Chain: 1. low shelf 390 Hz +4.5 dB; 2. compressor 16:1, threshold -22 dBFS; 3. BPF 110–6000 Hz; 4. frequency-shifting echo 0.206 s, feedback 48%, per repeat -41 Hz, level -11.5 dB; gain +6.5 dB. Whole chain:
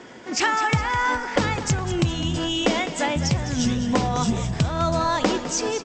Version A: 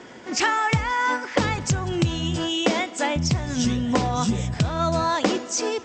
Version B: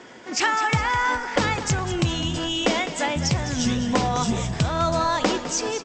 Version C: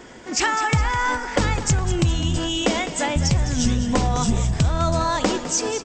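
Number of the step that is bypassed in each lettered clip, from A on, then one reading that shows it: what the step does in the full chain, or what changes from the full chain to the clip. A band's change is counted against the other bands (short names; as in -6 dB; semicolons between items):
4, echo-to-direct -10.5 dB to none; 1, 250 Hz band -2.0 dB; 3, 8 kHz band +4.0 dB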